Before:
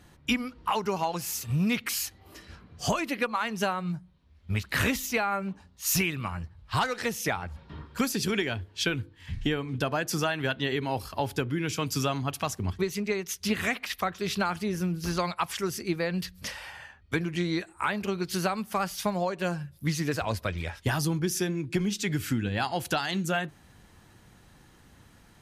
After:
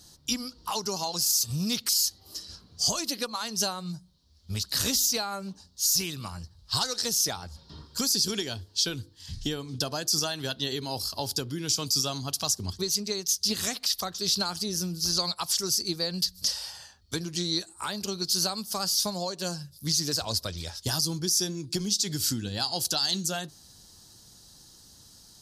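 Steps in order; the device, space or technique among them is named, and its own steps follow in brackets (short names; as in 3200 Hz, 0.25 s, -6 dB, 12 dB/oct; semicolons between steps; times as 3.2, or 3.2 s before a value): over-bright horn tweeter (resonant high shelf 3300 Hz +13.5 dB, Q 3; limiter -10.5 dBFS, peak gain reduction 11 dB); gain -4 dB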